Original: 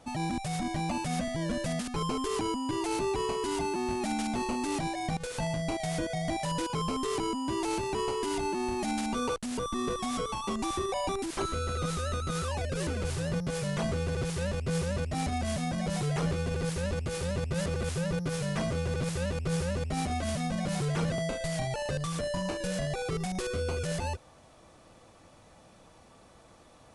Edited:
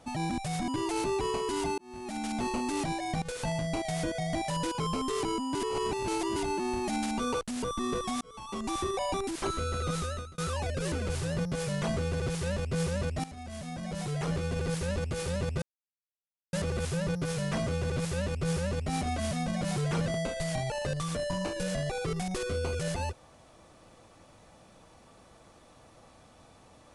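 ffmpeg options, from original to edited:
-filter_complex "[0:a]asplit=9[a][b][c][d][e][f][g][h][i];[a]atrim=end=0.682[j];[b]atrim=start=2.628:end=3.73,asetpts=PTS-STARTPTS,afade=t=out:st=1.098:d=0.004:c=hsin[k];[c]atrim=start=3.73:end=7.502,asetpts=PTS-STARTPTS,afade=t=in:d=0.65[l];[d]atrim=start=7.498:end=8.312,asetpts=PTS-STARTPTS,areverse[m];[e]atrim=start=8.308:end=10.16,asetpts=PTS-STARTPTS,afade=t=out:st=1.848:d=0.004:c=hsin[n];[f]atrim=start=10.16:end=12.33,asetpts=PTS-STARTPTS,afade=t=in:d=0.55,afade=t=out:st=1.81:d=0.36[o];[g]atrim=start=12.33:end=15.19,asetpts=PTS-STARTPTS,afade=t=in:d=0.004:c=hsin,afade=t=out:st=2.856:d=0.004:c=hsin:silence=0.158489[p];[h]atrim=start=15.19:end=17.57,asetpts=PTS-STARTPTS,afade=t=in:d=1.37:silence=0.158489,afade=t=out:st=2.376:d=0.004:c=hsin,apad=pad_dur=0.91[q];[i]atrim=start=17.57,asetpts=PTS-STARTPTS,afade=t=in:d=0.004:c=hsin[r];[k][l]concat=n=2:v=0:a=1[s];[j][s]acrossfade=d=0.004:c1=hsin:c2=hsin[t];[t][m]acrossfade=d=0.004:c1=hsin:c2=hsin[u];[n][o][p][q][r]concat=n=5:v=0:a=1[v];[u][v]acrossfade=d=0.004:c1=hsin:c2=hsin"

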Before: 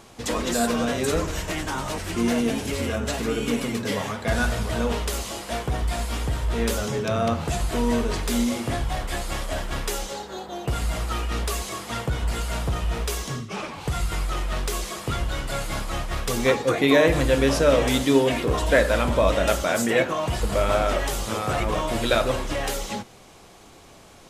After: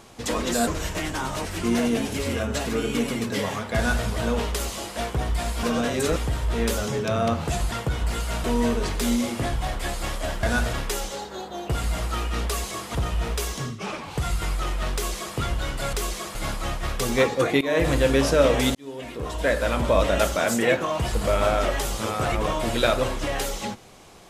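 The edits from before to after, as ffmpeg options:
-filter_complex "[0:a]asplit=13[a][b][c][d][e][f][g][h][i][j][k][l][m];[a]atrim=end=0.672[n];[b]atrim=start=1.198:end=6.162[o];[c]atrim=start=0.668:end=1.202[p];[d]atrim=start=6.158:end=7.722[q];[e]atrim=start=11.928:end=12.652[r];[f]atrim=start=7.718:end=9.712[s];[g]atrim=start=4.288:end=4.592[t];[h]atrim=start=9.708:end=11.932[u];[i]atrim=start=12.648:end=15.632[v];[j]atrim=start=14.638:end=15.062[w];[k]atrim=start=15.628:end=16.89,asetpts=PTS-STARTPTS,afade=t=out:st=1.258:d=0.004:c=hsin:silence=0.0841395[x];[l]atrim=start=16.89:end=18.03,asetpts=PTS-STARTPTS,afade=t=in:d=0.25:silence=0.0841395,afade=t=out:st=1.136:d=0.004:c=hsin[y];[m]atrim=start=18.03,asetpts=PTS-STARTPTS,afade=t=in:d=1.22[z];[n][o]acrossfade=d=0.004:c1=hsin:c2=hsin[aa];[aa][p]acrossfade=d=0.004:c1=hsin:c2=hsin[ab];[ab][q]acrossfade=d=0.004:c1=hsin:c2=hsin[ac];[ac][r]acrossfade=d=0.004:c1=hsin:c2=hsin[ad];[ad][s]acrossfade=d=0.004:c1=hsin:c2=hsin[ae];[ae][t]acrossfade=d=0.004:c1=hsin:c2=hsin[af];[af][u]acrossfade=d=0.004:c1=hsin:c2=hsin[ag];[ag][v]acrossfade=d=0.004:c1=hsin:c2=hsin[ah];[ah][w]acrossfade=d=0.004:c1=hsin:c2=hsin[ai];[x][y][z]concat=n=3:v=0:a=1[aj];[ai][aj]acrossfade=d=0.004:c1=hsin:c2=hsin"

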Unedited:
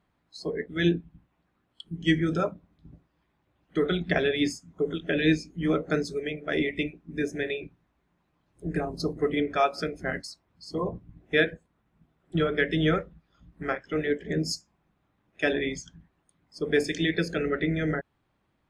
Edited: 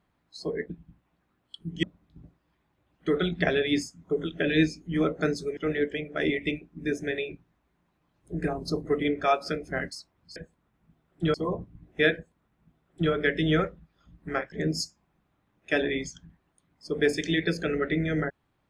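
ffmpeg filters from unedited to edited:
-filter_complex "[0:a]asplit=8[a][b][c][d][e][f][g][h];[a]atrim=end=0.702[i];[b]atrim=start=0.958:end=2.092[j];[c]atrim=start=2.518:end=6.262[k];[d]atrim=start=13.858:end=14.232[l];[e]atrim=start=6.258:end=10.682[m];[f]atrim=start=11.478:end=12.462[n];[g]atrim=start=10.678:end=13.862[o];[h]atrim=start=14.228[p];[i][j]acrossfade=d=0.004:c1=hsin:c2=hsin[q];[q][k]acrossfade=d=0.004:c1=hsin:c2=hsin[r];[r][l]acrossfade=d=0.004:c1=hsin:c2=hsin[s];[s][m]acrossfade=d=0.004:c1=hsin:c2=hsin[t];[t][n]acrossfade=d=0.004:c1=hsin:c2=hsin[u];[u][o]acrossfade=d=0.004:c1=hsin:c2=hsin[v];[v][p]acrossfade=d=0.004:c1=hsin:c2=hsin"

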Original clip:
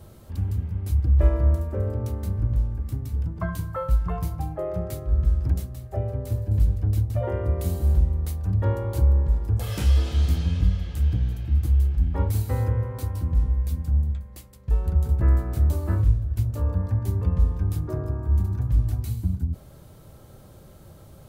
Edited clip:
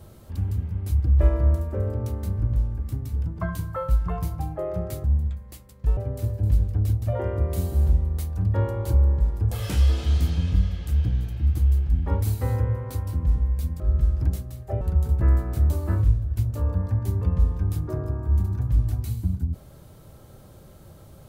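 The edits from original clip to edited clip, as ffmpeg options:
-filter_complex "[0:a]asplit=5[a][b][c][d][e];[a]atrim=end=5.042[f];[b]atrim=start=13.878:end=14.812[g];[c]atrim=start=6.048:end=13.882[h];[d]atrim=start=5.038:end=6.052[i];[e]atrim=start=14.808[j];[f][g]acrossfade=d=0.004:c1=hsin:c2=hsin[k];[k][h]acrossfade=d=0.004:c1=hsin:c2=hsin[l];[l][i]acrossfade=d=0.004:c1=hsin:c2=hsin[m];[m][j]acrossfade=d=0.004:c1=hsin:c2=hsin"

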